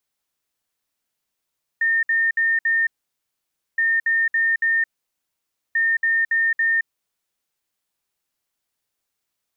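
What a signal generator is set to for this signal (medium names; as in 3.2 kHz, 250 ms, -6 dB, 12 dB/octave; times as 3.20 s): beep pattern sine 1.82 kHz, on 0.22 s, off 0.06 s, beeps 4, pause 0.91 s, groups 3, -16 dBFS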